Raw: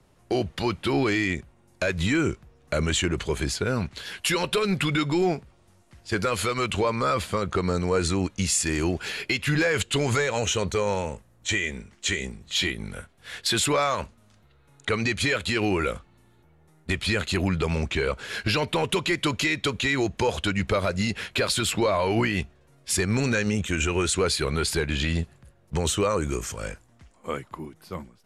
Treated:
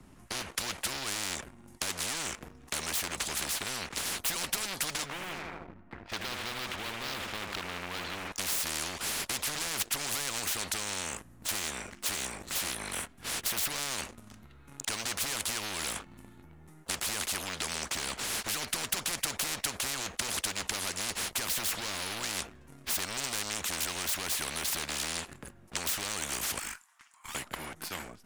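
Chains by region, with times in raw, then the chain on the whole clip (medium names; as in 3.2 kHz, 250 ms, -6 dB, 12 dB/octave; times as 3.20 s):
5.06–8.32 s: low-pass 2.1 kHz 24 dB/octave + feedback delay 79 ms, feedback 46%, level -9 dB
26.59–27.35 s: steep high-pass 920 Hz + treble shelf 11 kHz +3 dB + valve stage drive 44 dB, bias 0.25
whole clip: graphic EQ 125/250/500/4000 Hz -4/+8/-9/-5 dB; waveshaping leveller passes 2; spectrum-flattening compressor 10:1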